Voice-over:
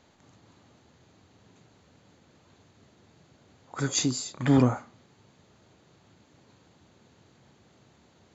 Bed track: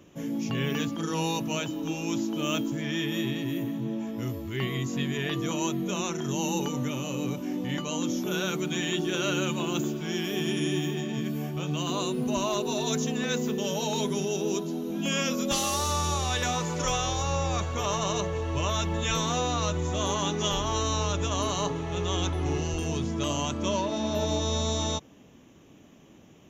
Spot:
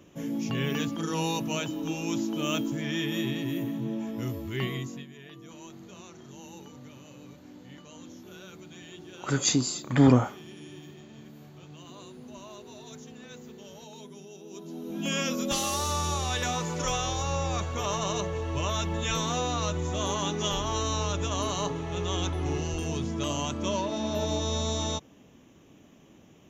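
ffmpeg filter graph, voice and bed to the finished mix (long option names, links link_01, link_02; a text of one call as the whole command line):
ffmpeg -i stem1.wav -i stem2.wav -filter_complex "[0:a]adelay=5500,volume=2dB[link_01];[1:a]volume=15.5dB,afade=type=out:start_time=4.64:duration=0.42:silence=0.141254,afade=type=in:start_time=14.5:duration=0.58:silence=0.158489[link_02];[link_01][link_02]amix=inputs=2:normalize=0" out.wav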